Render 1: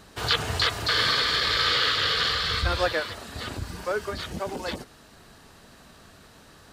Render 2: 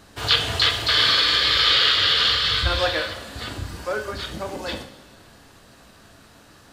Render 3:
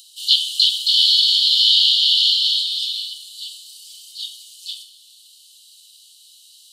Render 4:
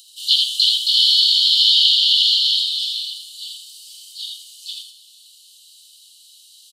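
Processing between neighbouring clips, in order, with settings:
dynamic EQ 3200 Hz, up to +7 dB, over -39 dBFS, Q 1.5; two-slope reverb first 0.53 s, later 2.4 s, from -16 dB, DRR 4 dB
upward compressor, threshold -39 dBFS; rippled Chebyshev high-pass 2900 Hz, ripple 6 dB; gain +7.5 dB
echo 81 ms -4 dB; gain -1 dB

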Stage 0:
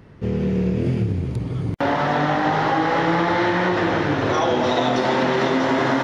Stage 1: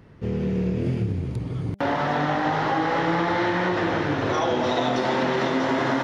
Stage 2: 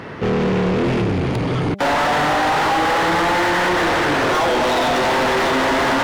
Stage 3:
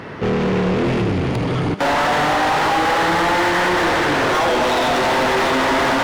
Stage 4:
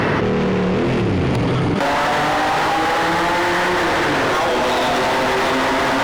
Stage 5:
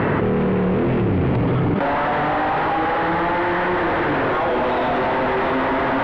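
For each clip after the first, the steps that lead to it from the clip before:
de-hum 199.3 Hz, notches 4; gain -3.5 dB
overdrive pedal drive 33 dB, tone 2800 Hz, clips at -11 dBFS
thinning echo 78 ms, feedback 79%, level -13.5 dB
fast leveller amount 100%; gain -1.5 dB
air absorption 500 m

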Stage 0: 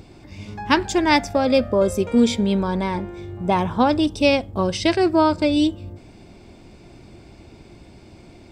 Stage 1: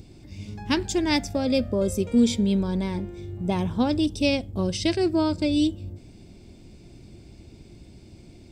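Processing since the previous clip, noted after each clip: bell 1100 Hz -13 dB 2.4 oct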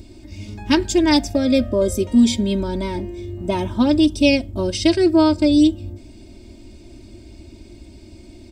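comb 3.2 ms, depth 92%; gain +3 dB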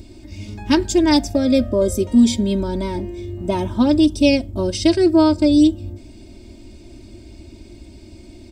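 dynamic EQ 2500 Hz, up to -4 dB, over -39 dBFS, Q 1; gain +1 dB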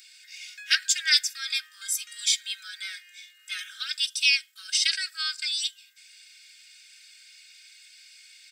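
steep high-pass 1400 Hz 96 dB/oct; gain +3.5 dB

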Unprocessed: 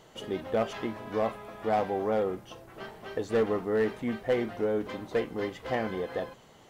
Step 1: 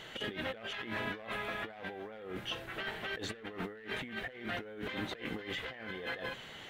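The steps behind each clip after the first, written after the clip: band shelf 2400 Hz +11.5 dB; negative-ratio compressor -38 dBFS, ratio -1; gain -4.5 dB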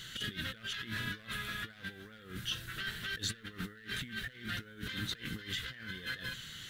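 EQ curve 140 Hz 0 dB, 800 Hz -26 dB, 1500 Hz -3 dB, 2300 Hz -10 dB, 3800 Hz +2 dB, 11000 Hz +6 dB; gain +5.5 dB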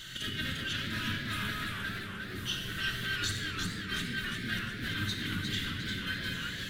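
shoebox room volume 3200 m³, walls mixed, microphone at 2.7 m; warbling echo 0.35 s, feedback 49%, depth 140 cents, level -4.5 dB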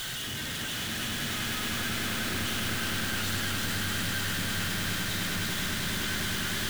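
infinite clipping; swelling echo 0.102 s, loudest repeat 8, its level -9 dB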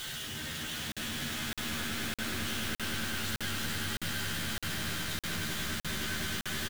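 doubler 13 ms -4 dB; crackling interface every 0.61 s, samples 2048, zero, from 0.92; gain -5.5 dB

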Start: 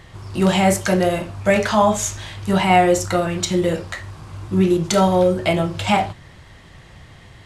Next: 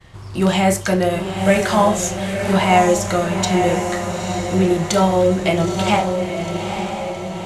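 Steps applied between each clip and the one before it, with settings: expander -41 dBFS; diffused feedback echo 0.904 s, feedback 55%, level -6 dB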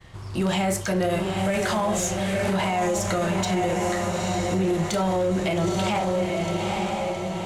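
in parallel at -4.5 dB: hard clip -17 dBFS, distortion -8 dB; on the sum: limiter -10.5 dBFS, peak gain reduction 9.5 dB; gain -6 dB

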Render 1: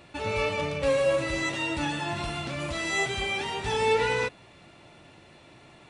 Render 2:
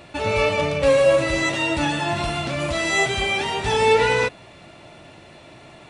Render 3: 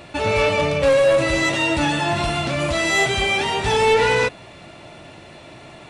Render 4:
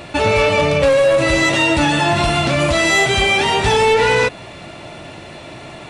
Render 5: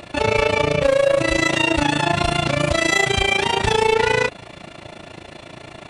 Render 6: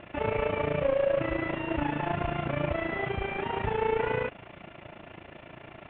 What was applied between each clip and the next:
bell 640 Hz +5.5 dB 0.23 oct; gain +7 dB
soft clip -14 dBFS, distortion -16 dB; gain +3.5 dB
compressor, threshold -18 dBFS, peak gain reduction 5.5 dB; gain +7 dB
AM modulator 28 Hz, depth 75%
CVSD 16 kbps; gain -8 dB

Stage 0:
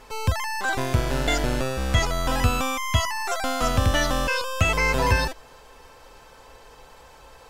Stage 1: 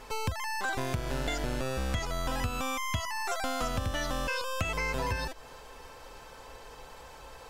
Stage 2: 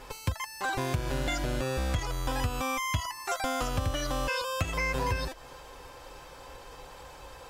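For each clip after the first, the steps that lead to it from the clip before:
compressor, threshold -29 dBFS, peak gain reduction 14 dB
notch comb 220 Hz; gain +3 dB

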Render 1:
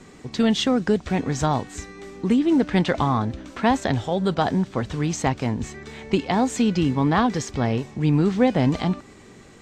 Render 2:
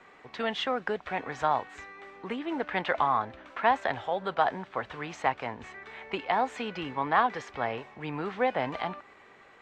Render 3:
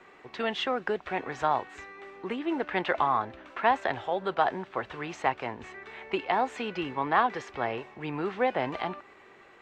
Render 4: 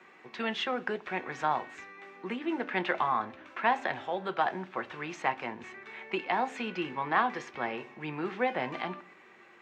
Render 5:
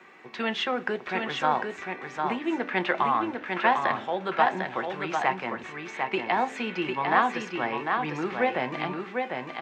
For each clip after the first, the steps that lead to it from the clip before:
three-band isolator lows -21 dB, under 560 Hz, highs -23 dB, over 2900 Hz
small resonant body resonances 360/2700 Hz, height 7 dB
reverb RT60 0.50 s, pre-delay 3 ms, DRR 12 dB; gain -2.5 dB
echo 0.75 s -4.5 dB; gain +4 dB

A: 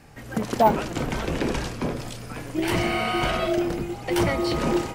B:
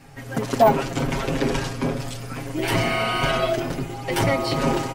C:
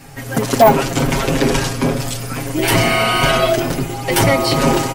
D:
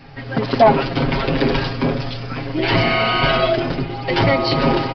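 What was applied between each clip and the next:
comb 7.4 ms, depth 96%
high shelf 6900 Hz +9.5 dB; soft clip -8 dBFS, distortion -22 dB; gain +7.5 dB
downsampling 11025 Hz; gain -2 dB

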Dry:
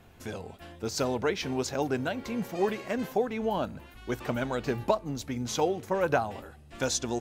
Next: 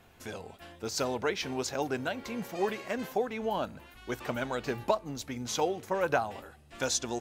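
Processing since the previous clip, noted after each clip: low shelf 400 Hz -6.5 dB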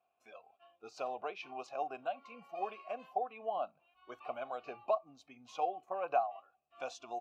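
spectral noise reduction 14 dB; vowel filter a; gain +3 dB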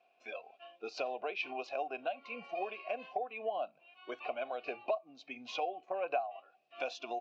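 compressor 2:1, threshold -50 dBFS, peak gain reduction 13.5 dB; speaker cabinet 270–5000 Hz, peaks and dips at 850 Hz -6 dB, 1200 Hz -10 dB, 2500 Hz +4 dB; gain +12 dB

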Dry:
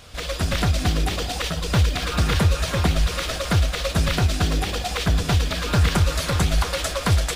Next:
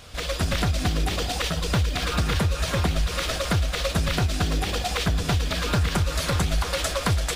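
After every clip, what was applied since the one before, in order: compressor, threshold -19 dBFS, peak gain reduction 6.5 dB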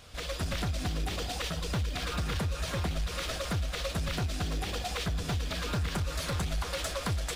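soft clip -16.5 dBFS, distortion -20 dB; gain -7 dB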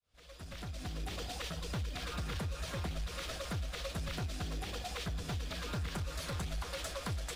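opening faded in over 1.16 s; gain -6.5 dB

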